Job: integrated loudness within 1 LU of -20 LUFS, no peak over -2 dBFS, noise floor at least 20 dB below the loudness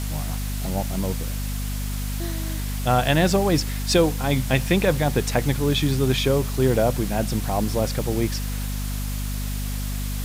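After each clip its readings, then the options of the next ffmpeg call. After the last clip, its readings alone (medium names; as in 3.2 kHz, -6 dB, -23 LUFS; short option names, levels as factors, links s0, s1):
hum 50 Hz; highest harmonic 250 Hz; hum level -25 dBFS; noise floor -27 dBFS; noise floor target -44 dBFS; loudness -23.5 LUFS; peak level -6.0 dBFS; loudness target -20.0 LUFS
-> -af "bandreject=f=50:t=h:w=4,bandreject=f=100:t=h:w=4,bandreject=f=150:t=h:w=4,bandreject=f=200:t=h:w=4,bandreject=f=250:t=h:w=4"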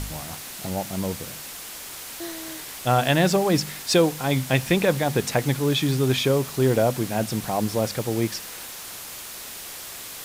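hum not found; noise floor -38 dBFS; noise floor target -45 dBFS
-> -af "afftdn=nr=7:nf=-38"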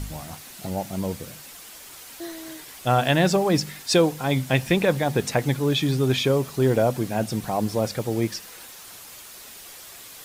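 noise floor -43 dBFS; loudness -23.0 LUFS; peak level -7.5 dBFS; loudness target -20.0 LUFS
-> -af "volume=1.41"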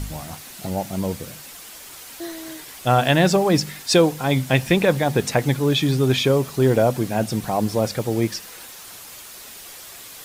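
loudness -20.0 LUFS; peak level -4.5 dBFS; noise floor -40 dBFS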